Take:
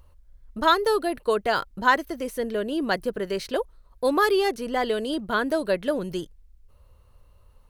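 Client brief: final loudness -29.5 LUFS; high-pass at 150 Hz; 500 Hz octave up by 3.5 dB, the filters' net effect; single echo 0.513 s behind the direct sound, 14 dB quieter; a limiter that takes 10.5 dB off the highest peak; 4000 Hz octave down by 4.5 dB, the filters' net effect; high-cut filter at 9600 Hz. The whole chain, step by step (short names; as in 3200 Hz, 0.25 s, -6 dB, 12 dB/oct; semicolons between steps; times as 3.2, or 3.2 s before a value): HPF 150 Hz; LPF 9600 Hz; bell 500 Hz +4.5 dB; bell 4000 Hz -5.5 dB; limiter -17 dBFS; echo 0.513 s -14 dB; gain -3 dB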